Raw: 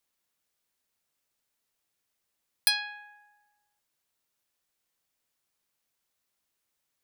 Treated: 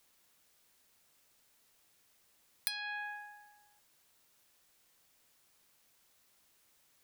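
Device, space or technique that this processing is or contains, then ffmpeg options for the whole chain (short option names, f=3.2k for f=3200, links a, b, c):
serial compression, leveller first: -af "acompressor=threshold=-31dB:ratio=2.5,acompressor=threshold=-46dB:ratio=5,volume=11dB"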